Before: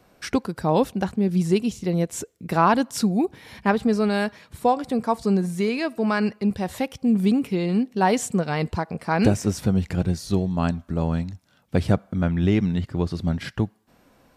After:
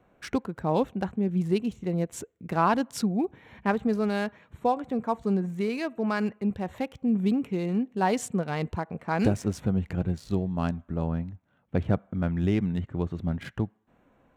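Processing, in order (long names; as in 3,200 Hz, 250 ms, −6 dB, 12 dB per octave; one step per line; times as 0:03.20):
adaptive Wiener filter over 9 samples
0:11.06–0:11.92: high-shelf EQ 3,500 Hz → 5,700 Hz −11 dB
level −5 dB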